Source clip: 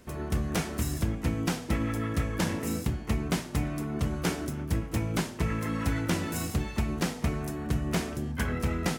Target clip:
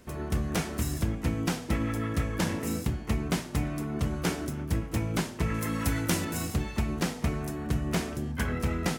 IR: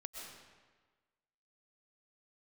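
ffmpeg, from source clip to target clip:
-filter_complex "[0:a]asettb=1/sr,asplit=3[a][b][c];[a]atrim=end=5.544[d];[b]atrim=start=5.54:end=6.25,asetpts=PTS-STARTPTS,afade=t=in:d=0.004:c=qsin,afade=t=out:st=0.706:d=0.004:c=qsin,highshelf=f=6.2k:g=11[e];[c]atrim=start=6.246[f];[d][e]acrossfade=d=0.004:c1=hsin:c2=qsin[g];[g][f]acrossfade=d=0.004:c1=qsin:c2=hsin"

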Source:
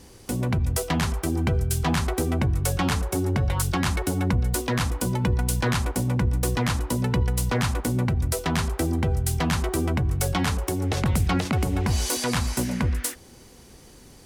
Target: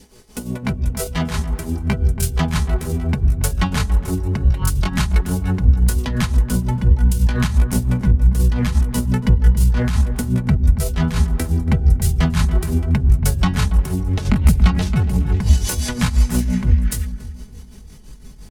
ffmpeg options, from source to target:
-filter_complex "[0:a]adynamicequalizer=threshold=0.00794:dfrequency=1100:dqfactor=3.4:tfrequency=1100:tqfactor=3.4:attack=5:release=100:ratio=0.375:range=1.5:mode=cutabove:tftype=bell,aecho=1:1:4.7:0.56,asubboost=boost=4:cutoff=170,atempo=0.77,tremolo=f=5.8:d=0.74,asplit=2[a][b];[b]adelay=281,lowpass=f=1k:p=1,volume=-10dB,asplit=2[c][d];[d]adelay=281,lowpass=f=1k:p=1,volume=0.41,asplit=2[e][f];[f]adelay=281,lowpass=f=1k:p=1,volume=0.41,asplit=2[g][h];[h]adelay=281,lowpass=f=1k:p=1,volume=0.41[i];[c][e][g][i]amix=inputs=4:normalize=0[j];[a][j]amix=inputs=2:normalize=0,volume=3dB"

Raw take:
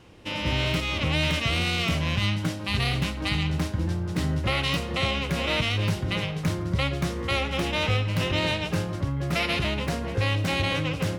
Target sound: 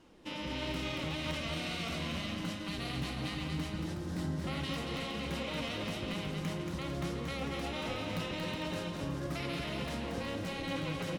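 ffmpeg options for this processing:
-filter_complex "[0:a]equalizer=f=100:t=o:w=0.67:g=-11,equalizer=f=250:t=o:w=0.67:g=4,equalizer=f=2.5k:t=o:w=0.67:g=-4,alimiter=limit=-21dB:level=0:latency=1,flanger=delay=3.1:depth=4:regen=61:speed=1.5:shape=sinusoidal,asplit=2[a][b];[b]aecho=0:1:230|368|450.8|500.5|530.3:0.631|0.398|0.251|0.158|0.1[c];[a][c]amix=inputs=2:normalize=0,volume=-4dB"

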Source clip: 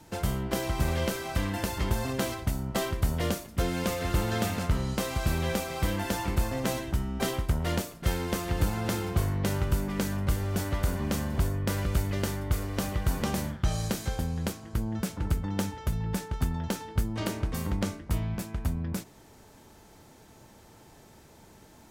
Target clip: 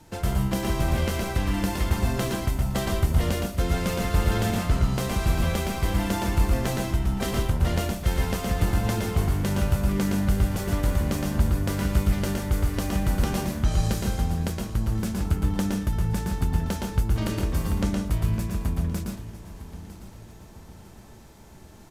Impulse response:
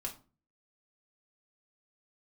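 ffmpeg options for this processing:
-filter_complex "[0:a]lowshelf=f=69:g=7,aecho=1:1:954|1908|2862|3816:0.168|0.0722|0.031|0.0133,asplit=2[a][b];[1:a]atrim=start_sample=2205,adelay=116[c];[b][c]afir=irnorm=-1:irlink=0,volume=-1dB[d];[a][d]amix=inputs=2:normalize=0,aresample=32000,aresample=44100"

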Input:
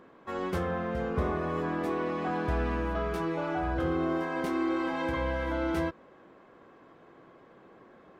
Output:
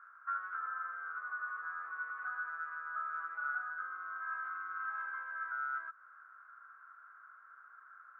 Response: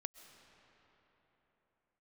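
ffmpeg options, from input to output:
-af "acompressor=threshold=-35dB:ratio=6,asuperpass=centerf=1400:order=4:qfactor=5.8,volume=13.5dB"

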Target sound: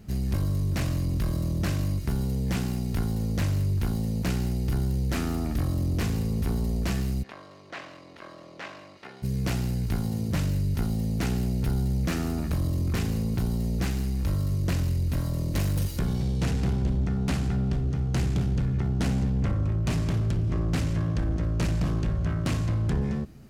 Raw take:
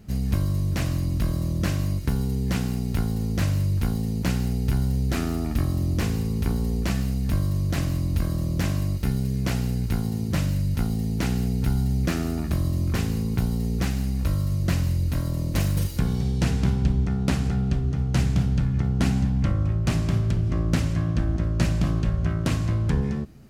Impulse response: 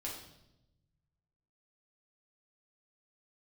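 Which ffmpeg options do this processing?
-filter_complex "[0:a]asoftclip=type=tanh:threshold=-20dB,asplit=3[a][b][c];[a]afade=t=out:st=7.22:d=0.02[d];[b]highpass=670,lowpass=3k,afade=t=in:st=7.22:d=0.02,afade=t=out:st=9.22:d=0.02[e];[c]afade=t=in:st=9.22:d=0.02[f];[d][e][f]amix=inputs=3:normalize=0"

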